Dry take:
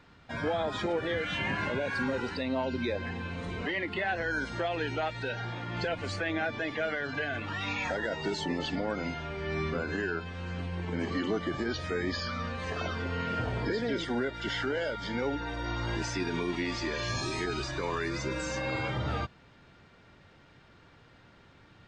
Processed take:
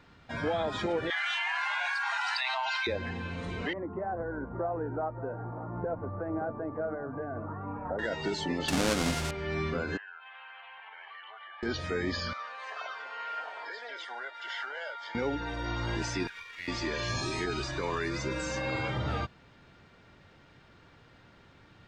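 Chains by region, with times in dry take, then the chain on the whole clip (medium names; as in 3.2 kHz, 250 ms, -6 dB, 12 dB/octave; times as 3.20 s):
1.10–2.87 s: steep high-pass 720 Hz 96 dB/octave + level flattener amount 100%
3.73–7.99 s: Chebyshev low-pass 1.2 kHz, order 4 + delay 574 ms -13.5 dB
8.68–9.31 s: square wave that keeps the level + low-pass 7.7 kHz + treble shelf 4 kHz +10 dB
9.97–11.63 s: elliptic band-pass 780–3100 Hz, stop band 50 dB + compression 5:1, threshold -44 dBFS
12.33–15.15 s: high-pass 790 Hz 24 dB/octave + tilt EQ -3 dB/octave
16.27–16.68 s: inverse Chebyshev high-pass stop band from 570 Hz, stop band 50 dB + distance through air 260 m + sliding maximum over 3 samples
whole clip: none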